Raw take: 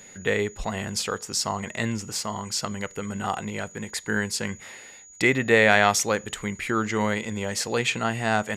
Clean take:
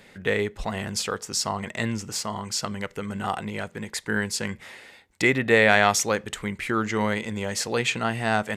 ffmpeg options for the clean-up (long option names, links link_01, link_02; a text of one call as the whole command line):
ffmpeg -i in.wav -af "bandreject=frequency=6800:width=30" out.wav